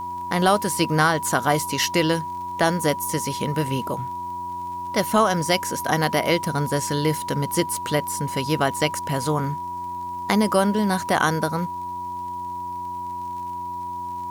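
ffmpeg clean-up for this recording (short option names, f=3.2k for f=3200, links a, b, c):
-af "adeclick=t=4,bandreject=f=90.1:t=h:w=4,bandreject=f=180.2:t=h:w=4,bandreject=f=270.3:t=h:w=4,bandreject=f=360.4:t=h:w=4,bandreject=f=970:w=30,agate=range=-21dB:threshold=-23dB"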